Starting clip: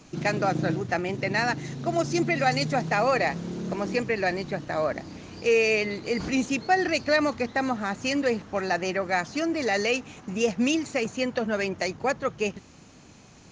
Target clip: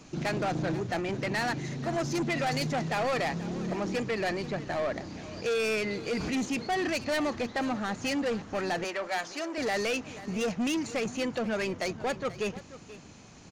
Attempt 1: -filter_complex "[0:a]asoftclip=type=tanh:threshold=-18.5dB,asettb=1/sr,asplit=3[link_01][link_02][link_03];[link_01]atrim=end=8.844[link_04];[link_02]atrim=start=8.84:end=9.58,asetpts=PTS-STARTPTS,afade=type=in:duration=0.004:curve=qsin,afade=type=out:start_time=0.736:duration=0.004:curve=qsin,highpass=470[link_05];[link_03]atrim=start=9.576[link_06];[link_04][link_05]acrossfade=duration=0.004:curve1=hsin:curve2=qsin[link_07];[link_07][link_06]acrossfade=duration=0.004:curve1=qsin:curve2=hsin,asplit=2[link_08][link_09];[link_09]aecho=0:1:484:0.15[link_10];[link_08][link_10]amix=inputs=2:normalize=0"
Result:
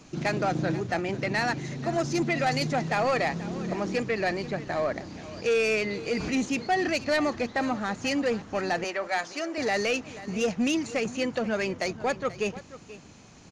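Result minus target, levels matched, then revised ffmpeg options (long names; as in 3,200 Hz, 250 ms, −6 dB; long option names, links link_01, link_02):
soft clipping: distortion −7 dB
-filter_complex "[0:a]asoftclip=type=tanh:threshold=-25.5dB,asettb=1/sr,asplit=3[link_01][link_02][link_03];[link_01]atrim=end=8.844[link_04];[link_02]atrim=start=8.84:end=9.58,asetpts=PTS-STARTPTS,afade=type=in:duration=0.004:curve=qsin,afade=type=out:start_time=0.736:duration=0.004:curve=qsin,highpass=470[link_05];[link_03]atrim=start=9.576[link_06];[link_04][link_05]acrossfade=duration=0.004:curve1=hsin:curve2=qsin[link_07];[link_07][link_06]acrossfade=duration=0.004:curve1=qsin:curve2=hsin,asplit=2[link_08][link_09];[link_09]aecho=0:1:484:0.15[link_10];[link_08][link_10]amix=inputs=2:normalize=0"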